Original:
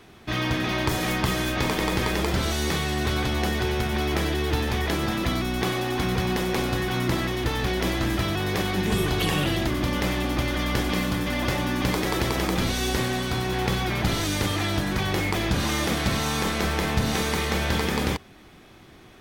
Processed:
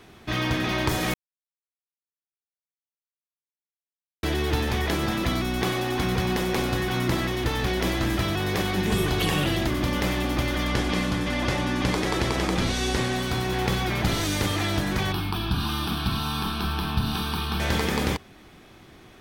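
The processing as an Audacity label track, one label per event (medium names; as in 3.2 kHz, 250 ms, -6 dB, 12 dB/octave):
1.140000	4.230000	mute
10.670000	13.160000	low-pass 9.4 kHz
15.120000	17.600000	static phaser centre 2 kHz, stages 6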